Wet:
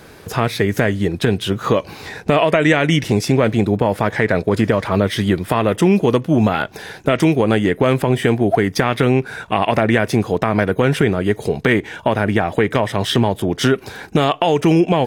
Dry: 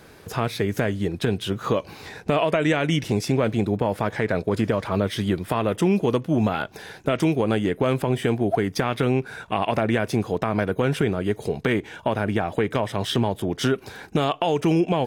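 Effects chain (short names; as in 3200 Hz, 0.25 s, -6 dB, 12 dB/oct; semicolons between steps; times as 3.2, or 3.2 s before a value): dynamic EQ 1900 Hz, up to +5 dB, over -44 dBFS, Q 4.5; gain +6.5 dB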